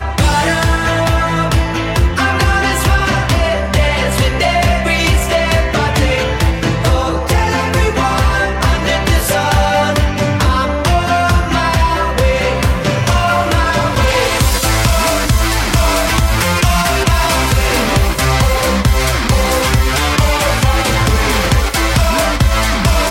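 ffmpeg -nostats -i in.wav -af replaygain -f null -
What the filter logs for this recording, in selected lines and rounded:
track_gain = -2.6 dB
track_peak = 0.610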